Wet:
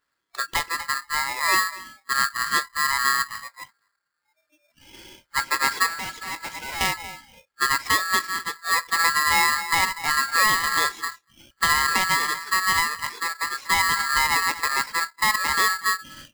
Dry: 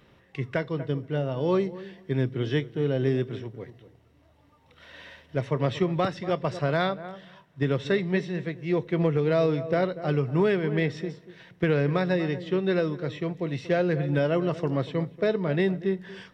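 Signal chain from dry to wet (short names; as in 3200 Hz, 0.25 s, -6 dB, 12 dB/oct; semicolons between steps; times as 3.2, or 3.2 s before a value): 5.88–6.81 overloaded stage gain 31.5 dB; spectral noise reduction 23 dB; polarity switched at an audio rate 1500 Hz; gain +3 dB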